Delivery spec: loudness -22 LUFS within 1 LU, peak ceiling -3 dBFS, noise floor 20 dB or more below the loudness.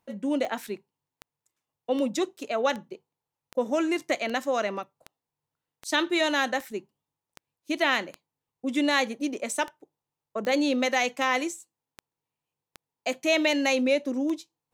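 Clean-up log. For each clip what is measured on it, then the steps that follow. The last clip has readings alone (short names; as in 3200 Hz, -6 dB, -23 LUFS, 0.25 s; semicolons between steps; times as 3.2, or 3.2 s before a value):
clicks 19; loudness -27.0 LUFS; peak -9.0 dBFS; loudness target -22.0 LUFS
-> de-click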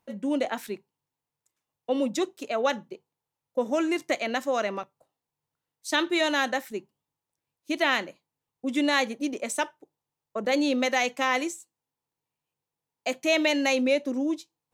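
clicks 0; loudness -27.0 LUFS; peak -9.0 dBFS; loudness target -22.0 LUFS
-> gain +5 dB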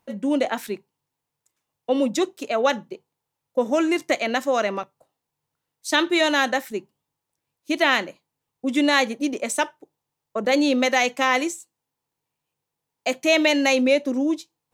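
loudness -22.0 LUFS; peak -4.0 dBFS; noise floor -83 dBFS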